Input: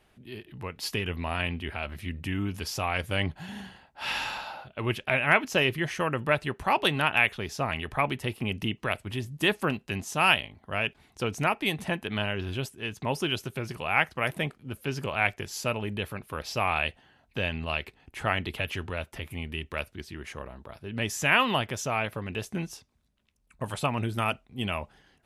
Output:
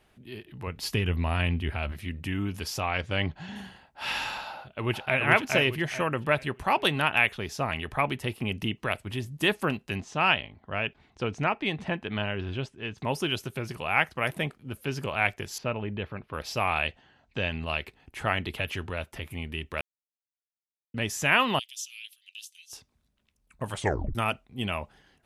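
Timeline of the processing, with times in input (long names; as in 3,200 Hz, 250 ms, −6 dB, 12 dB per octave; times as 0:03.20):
0:00.67–0:01.92: low-shelf EQ 170 Hz +10 dB
0:02.80–0:03.56: low-pass filter 6,600 Hz 24 dB per octave
0:04.51–0:05.20: delay throw 420 ms, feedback 30%, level −2.5 dB
0:10.00–0:12.98: high-frequency loss of the air 130 metres
0:15.58–0:16.34: high-frequency loss of the air 290 metres
0:16.87–0:17.51: Butterworth low-pass 7,700 Hz
0:19.81–0:20.94: silence
0:21.59–0:22.73: elliptic high-pass filter 3,000 Hz, stop band 70 dB
0:23.75: tape stop 0.40 s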